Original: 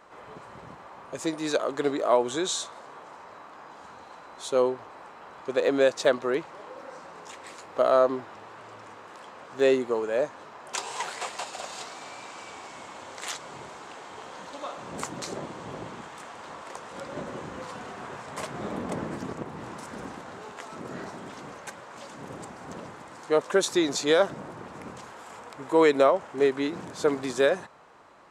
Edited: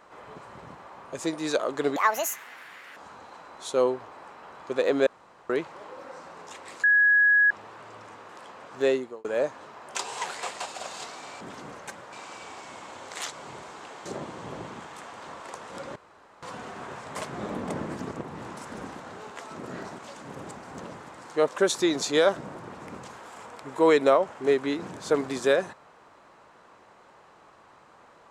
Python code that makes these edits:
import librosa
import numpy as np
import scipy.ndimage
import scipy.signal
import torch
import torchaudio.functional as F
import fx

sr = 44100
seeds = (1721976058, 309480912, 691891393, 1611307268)

y = fx.edit(x, sr, fx.speed_span(start_s=1.96, length_s=1.79, speed=1.78),
    fx.room_tone_fill(start_s=5.85, length_s=0.43),
    fx.bleep(start_s=7.62, length_s=0.67, hz=1670.0, db=-16.0),
    fx.fade_out_span(start_s=9.57, length_s=0.46),
    fx.cut(start_s=14.12, length_s=1.15),
    fx.room_tone_fill(start_s=17.17, length_s=0.47),
    fx.move(start_s=21.2, length_s=0.72, to_s=12.19), tone=tone)